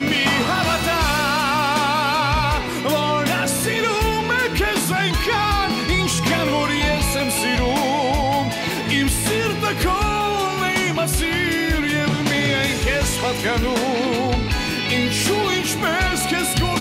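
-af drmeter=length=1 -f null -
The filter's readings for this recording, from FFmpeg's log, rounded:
Channel 1: DR: 6.1
Overall DR: 6.1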